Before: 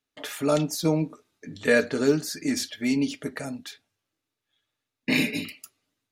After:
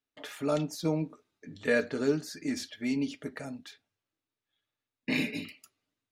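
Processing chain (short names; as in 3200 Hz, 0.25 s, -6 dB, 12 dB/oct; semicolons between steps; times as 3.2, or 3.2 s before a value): high shelf 6900 Hz -9 dB; gain -6 dB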